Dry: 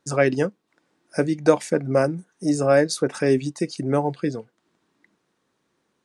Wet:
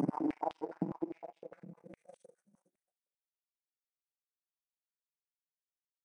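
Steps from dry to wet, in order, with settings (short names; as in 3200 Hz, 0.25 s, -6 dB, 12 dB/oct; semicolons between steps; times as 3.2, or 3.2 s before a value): reverse; compressor 6:1, threshold -25 dBFS, peak gain reduction 14.5 dB; reverse; Paulstretch 21×, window 0.05 s, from 2.08; power-law curve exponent 3; stepped high-pass 9.8 Hz 210–3300 Hz; gain -2 dB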